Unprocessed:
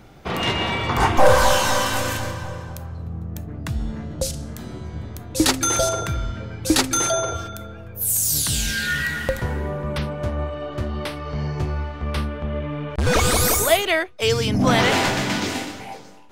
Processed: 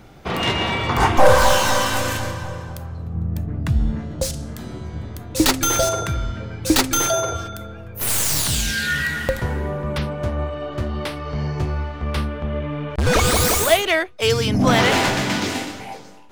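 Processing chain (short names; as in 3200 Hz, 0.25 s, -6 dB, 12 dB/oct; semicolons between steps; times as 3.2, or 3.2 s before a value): tracing distortion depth 0.055 ms; 3.15–3.99 tone controls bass +6 dB, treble -4 dB; gain +1.5 dB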